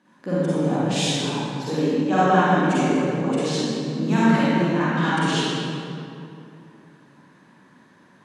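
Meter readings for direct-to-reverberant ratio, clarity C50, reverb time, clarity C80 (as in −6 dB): −11.0 dB, −7.5 dB, 2.6 s, −4.0 dB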